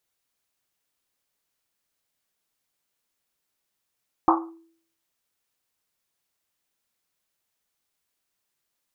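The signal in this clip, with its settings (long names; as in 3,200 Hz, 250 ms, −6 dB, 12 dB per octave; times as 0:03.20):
drum after Risset, pitch 330 Hz, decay 0.58 s, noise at 990 Hz, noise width 480 Hz, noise 55%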